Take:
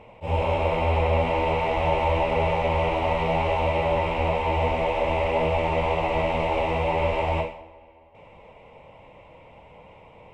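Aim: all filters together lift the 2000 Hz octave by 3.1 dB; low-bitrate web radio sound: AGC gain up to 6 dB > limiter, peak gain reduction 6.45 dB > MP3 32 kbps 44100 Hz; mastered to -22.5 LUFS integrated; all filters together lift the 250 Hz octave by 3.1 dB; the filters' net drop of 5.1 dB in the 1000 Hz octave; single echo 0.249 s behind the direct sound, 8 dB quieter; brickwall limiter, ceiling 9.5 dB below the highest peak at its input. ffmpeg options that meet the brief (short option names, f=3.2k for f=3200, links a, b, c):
-af "equalizer=f=250:t=o:g=5,equalizer=f=1k:t=o:g=-7.5,equalizer=f=2k:t=o:g=5,alimiter=limit=-20.5dB:level=0:latency=1,aecho=1:1:249:0.398,dynaudnorm=m=6dB,alimiter=level_in=0.5dB:limit=-24dB:level=0:latency=1,volume=-0.5dB,volume=11dB" -ar 44100 -c:a libmp3lame -b:a 32k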